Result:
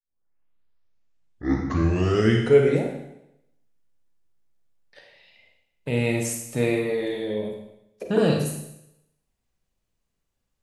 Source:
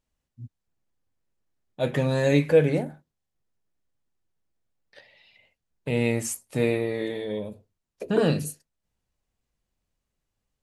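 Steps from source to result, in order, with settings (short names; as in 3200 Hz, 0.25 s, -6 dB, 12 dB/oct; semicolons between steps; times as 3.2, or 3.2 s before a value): tape start at the beginning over 2.88 s; Schroeder reverb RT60 0.82 s, combs from 33 ms, DRR 2.5 dB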